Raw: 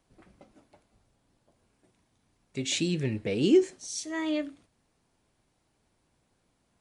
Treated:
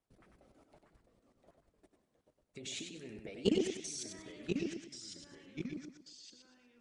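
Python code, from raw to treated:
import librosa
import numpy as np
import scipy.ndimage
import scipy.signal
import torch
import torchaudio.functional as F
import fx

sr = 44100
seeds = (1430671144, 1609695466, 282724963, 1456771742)

p1 = fx.small_body(x, sr, hz=(420.0, 670.0, 1300.0), ring_ms=45, db=7)
p2 = fx.level_steps(p1, sr, step_db=21)
p3 = fx.hpss(p2, sr, part='harmonic', gain_db=-16)
p4 = p3 + fx.echo_feedback(p3, sr, ms=96, feedback_pct=32, wet_db=-6, dry=0)
p5 = fx.echo_pitch(p4, sr, ms=611, semitones=-2, count=2, db_per_echo=-6.0)
y = F.gain(torch.from_numpy(p5), 1.5).numpy()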